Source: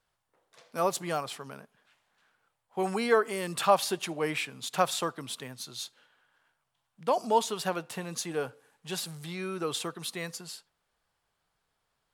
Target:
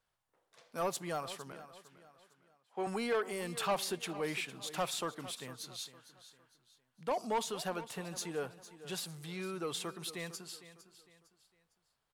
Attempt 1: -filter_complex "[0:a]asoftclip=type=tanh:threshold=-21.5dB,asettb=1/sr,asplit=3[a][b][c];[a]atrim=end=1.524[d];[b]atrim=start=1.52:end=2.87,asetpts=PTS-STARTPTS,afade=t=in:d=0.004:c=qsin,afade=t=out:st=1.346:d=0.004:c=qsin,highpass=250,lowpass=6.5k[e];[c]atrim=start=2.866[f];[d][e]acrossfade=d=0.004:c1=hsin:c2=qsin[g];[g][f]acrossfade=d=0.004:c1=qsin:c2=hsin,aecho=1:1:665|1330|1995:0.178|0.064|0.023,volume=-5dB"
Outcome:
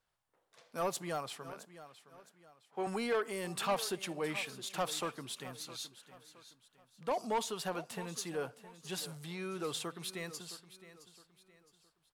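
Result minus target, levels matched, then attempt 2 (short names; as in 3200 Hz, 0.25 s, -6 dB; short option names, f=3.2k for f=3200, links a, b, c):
echo 0.209 s late
-filter_complex "[0:a]asoftclip=type=tanh:threshold=-21.5dB,asettb=1/sr,asplit=3[a][b][c];[a]atrim=end=1.524[d];[b]atrim=start=1.52:end=2.87,asetpts=PTS-STARTPTS,afade=t=in:d=0.004:c=qsin,afade=t=out:st=1.346:d=0.004:c=qsin,highpass=250,lowpass=6.5k[e];[c]atrim=start=2.866[f];[d][e]acrossfade=d=0.004:c1=hsin:c2=qsin[g];[g][f]acrossfade=d=0.004:c1=qsin:c2=hsin,aecho=1:1:456|912|1368:0.178|0.064|0.023,volume=-5dB"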